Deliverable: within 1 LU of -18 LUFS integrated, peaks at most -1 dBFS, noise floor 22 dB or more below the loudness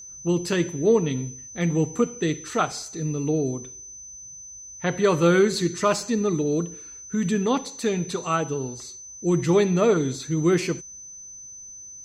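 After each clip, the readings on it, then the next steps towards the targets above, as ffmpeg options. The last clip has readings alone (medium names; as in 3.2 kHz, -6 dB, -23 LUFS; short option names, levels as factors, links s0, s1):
steady tone 6.1 kHz; tone level -39 dBFS; loudness -24.0 LUFS; peak level -8.0 dBFS; loudness target -18.0 LUFS
-> -af "bandreject=f=6100:w=30"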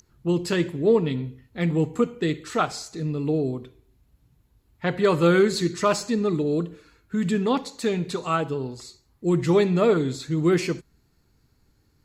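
steady tone not found; loudness -24.0 LUFS; peak level -8.5 dBFS; loudness target -18.0 LUFS
-> -af "volume=2"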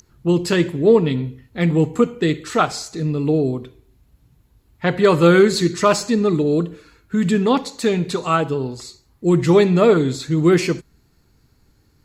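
loudness -18.0 LUFS; peak level -2.0 dBFS; noise floor -59 dBFS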